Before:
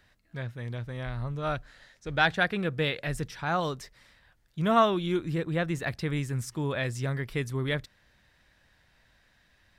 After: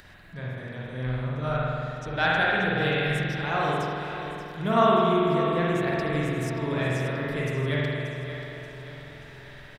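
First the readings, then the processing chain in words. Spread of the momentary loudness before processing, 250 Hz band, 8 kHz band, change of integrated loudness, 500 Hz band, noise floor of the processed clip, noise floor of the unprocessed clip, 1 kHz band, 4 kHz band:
13 LU, +4.0 dB, can't be measured, +3.5 dB, +5.0 dB, −45 dBFS, −66 dBFS, +4.5 dB, +2.5 dB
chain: upward compression, threshold −38 dBFS
repeating echo 581 ms, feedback 51%, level −10.5 dB
spring reverb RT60 2.3 s, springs 47 ms, chirp 35 ms, DRR −5.5 dB
level −3 dB

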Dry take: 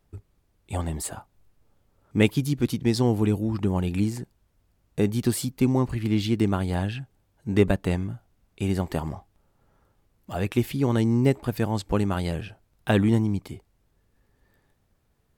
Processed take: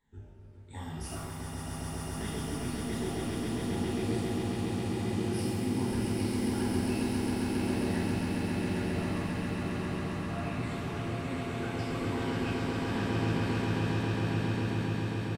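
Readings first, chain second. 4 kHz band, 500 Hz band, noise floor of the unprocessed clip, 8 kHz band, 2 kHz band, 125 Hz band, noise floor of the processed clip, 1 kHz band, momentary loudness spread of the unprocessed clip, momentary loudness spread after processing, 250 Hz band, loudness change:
−3.0 dB, −7.0 dB, −69 dBFS, −4.5 dB, −2.0 dB, −6.0 dB, −42 dBFS, −2.5 dB, 14 LU, 8 LU, −5.5 dB, −7.0 dB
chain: rippled gain that drifts along the octave scale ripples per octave 1, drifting −1.4 Hz, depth 17 dB
graphic EQ with 10 bands 125 Hz −4 dB, 500 Hz −10 dB, 4,000 Hz −3 dB, 8,000 Hz −8 dB
reversed playback
downward compressor 6 to 1, threshold −34 dBFS, peak gain reduction 18.5 dB
reversed playback
chorus effect 0.98 Hz, delay 18.5 ms, depth 5.7 ms
on a send: echo that builds up and dies away 135 ms, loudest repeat 8, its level −4 dB
on the sum: downsampling to 22,050 Hz
reverb with rising layers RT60 1.1 s, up +7 semitones, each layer −8 dB, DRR −4.5 dB
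level −4 dB

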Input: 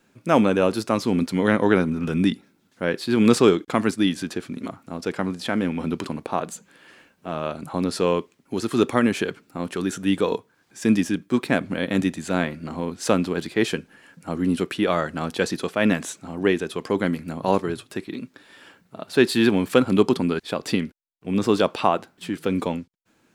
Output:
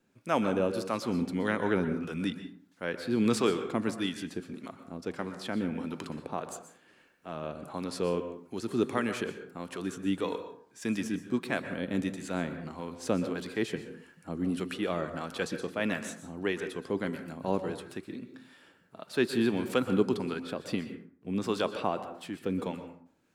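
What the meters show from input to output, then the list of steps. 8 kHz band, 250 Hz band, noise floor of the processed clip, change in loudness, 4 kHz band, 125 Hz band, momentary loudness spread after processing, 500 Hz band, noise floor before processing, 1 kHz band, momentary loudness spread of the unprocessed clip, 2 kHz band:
−9.5 dB, −9.5 dB, −63 dBFS, −9.5 dB, −9.5 dB, −9.5 dB, 13 LU, −9.5 dB, −64 dBFS, −9.5 dB, 14 LU, −9.0 dB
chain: two-band tremolo in antiphase 1.6 Hz, depth 50%, crossover 590 Hz
dense smooth reverb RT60 0.56 s, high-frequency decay 0.5×, pre-delay 110 ms, DRR 9 dB
level −7.5 dB

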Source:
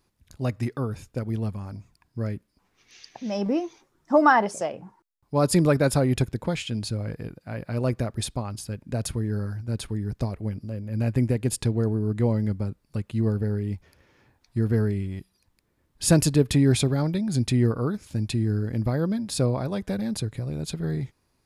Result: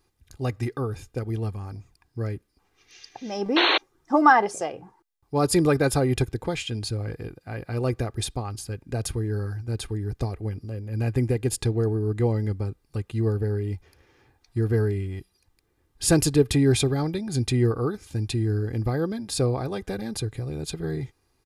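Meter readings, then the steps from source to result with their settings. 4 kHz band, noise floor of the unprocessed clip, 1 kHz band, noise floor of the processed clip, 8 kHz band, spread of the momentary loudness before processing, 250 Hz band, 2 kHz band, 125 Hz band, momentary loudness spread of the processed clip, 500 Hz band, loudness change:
+5.0 dB, −71 dBFS, +2.5 dB, −70 dBFS, +1.0 dB, 13 LU, −1.5 dB, +3.0 dB, −0.5 dB, 14 LU, +1.0 dB, 0.0 dB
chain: comb filter 2.5 ms, depth 50%
sound drawn into the spectrogram noise, 0:03.56–0:03.78, 270–4,400 Hz −20 dBFS

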